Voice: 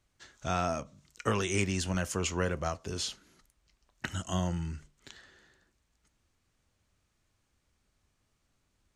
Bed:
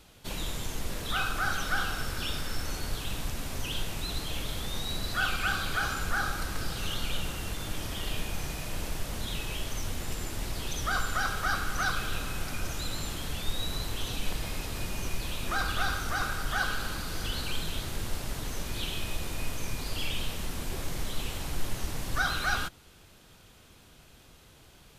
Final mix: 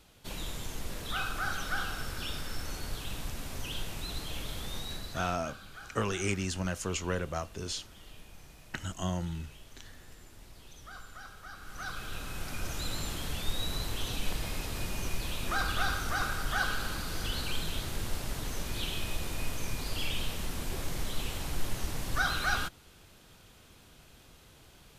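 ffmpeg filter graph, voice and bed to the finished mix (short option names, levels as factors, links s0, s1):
-filter_complex "[0:a]adelay=4700,volume=0.794[s0];[1:a]volume=4.47,afade=t=out:st=4.75:d=0.65:silence=0.199526,afade=t=in:st=11.56:d=1.32:silence=0.141254[s1];[s0][s1]amix=inputs=2:normalize=0"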